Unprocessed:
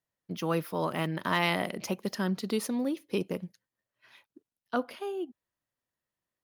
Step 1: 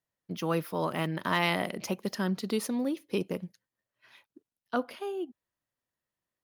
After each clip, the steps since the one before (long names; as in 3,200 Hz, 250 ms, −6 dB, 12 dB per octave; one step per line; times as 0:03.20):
no processing that can be heard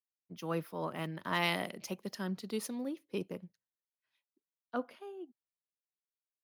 multiband upward and downward expander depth 70%
level −7.5 dB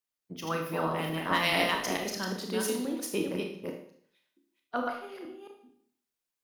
delay that plays each chunk backwards 219 ms, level −2 dB
harmonic and percussive parts rebalanced harmonic −8 dB
four-comb reverb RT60 0.6 s, combs from 25 ms, DRR 2 dB
level +7 dB